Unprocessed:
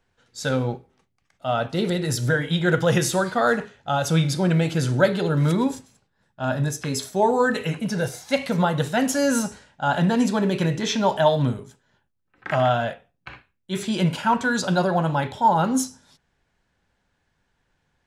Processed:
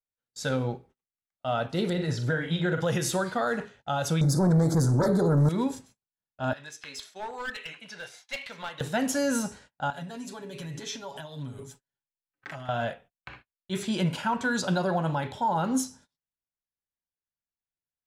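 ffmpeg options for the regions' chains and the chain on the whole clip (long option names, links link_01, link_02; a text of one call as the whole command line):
ffmpeg -i in.wav -filter_complex "[0:a]asettb=1/sr,asplit=3[link_01][link_02][link_03];[link_01]atrim=end=1.934[link_04];[link_02]atrim=start=1.93:end=2.82,asetpts=PTS-STARTPTS,afade=type=in:duration=0.004:curve=qsin,afade=type=out:start_time=0.886:duration=0.004:curve=qsin,acrossover=split=6600[link_05][link_06];[link_06]acompressor=threshold=-45dB:ratio=4:attack=1:release=60[link_07];[link_05][link_07]amix=inputs=2:normalize=0,highshelf=frequency=6300:gain=-11,asplit=2[link_08][link_09];[link_09]adelay=44,volume=-8dB[link_10];[link_08][link_10]amix=inputs=2:normalize=0,atrim=end_sample=39249[link_11];[link_03]atrim=start=2.816[link_12];[link_04][link_11]acrossfade=duration=0.004:curve1=hsin:curve2=qsin[link_13];[link_13][link_12]acrossfade=duration=0.004:curve1=qsin:curve2=hsin,asettb=1/sr,asplit=3[link_14][link_15][link_16];[link_14]atrim=end=4.214[link_17];[link_15]atrim=start=4.21:end=5.49,asetpts=PTS-STARTPTS,afade=type=in:duration=0.004:curve=qsin,afade=type=out:start_time=1.276:duration=0.004:curve=qsin,equalizer=frequency=2400:width=4.7:gain=5.5,aeval=exprs='0.631*sin(PI/2*3.55*val(0)/0.631)':channel_layout=same,asuperstop=centerf=2700:order=4:qfactor=0.61[link_18];[link_16]atrim=start=5.486[link_19];[link_17][link_18]acrossfade=duration=0.004:curve1=hsin:curve2=qsin[link_20];[link_20][link_19]acrossfade=duration=0.004:curve1=qsin:curve2=hsin,asettb=1/sr,asplit=3[link_21][link_22][link_23];[link_21]atrim=end=6.534[link_24];[link_22]atrim=start=6.53:end=8.81,asetpts=PTS-STARTPTS,afade=type=in:duration=0.004:curve=qsin,afade=type=out:start_time=2.276:duration=0.004:curve=qsin,bandpass=frequency=2700:width_type=q:width=1.1,aeval=exprs='clip(val(0),-1,0.0316)':channel_layout=same[link_25];[link_23]atrim=start=8.806[link_26];[link_24][link_25]acrossfade=duration=0.004:curve1=hsin:curve2=qsin[link_27];[link_27][link_26]acrossfade=duration=0.004:curve1=qsin:curve2=hsin,asettb=1/sr,asplit=3[link_28][link_29][link_30];[link_28]atrim=end=9.904[link_31];[link_29]atrim=start=9.9:end=12.69,asetpts=PTS-STARTPTS,afade=type=in:duration=0.004:curve=qsin,afade=type=out:start_time=2.786:duration=0.004:curve=qsin,acompressor=threshold=-33dB:ratio=10:attack=3.2:release=140:knee=1:detection=peak,highshelf=frequency=4300:gain=9,aecho=1:1:7.2:0.68,atrim=end_sample=123039[link_32];[link_30]atrim=start=12.686[link_33];[link_31][link_32]acrossfade=duration=0.004:curve1=hsin:curve2=qsin[link_34];[link_34][link_33]acrossfade=duration=0.004:curve1=qsin:curve2=hsin,agate=range=-30dB:threshold=-47dB:ratio=16:detection=peak,alimiter=limit=-13.5dB:level=0:latency=1:release=117,volume=-4dB" out.wav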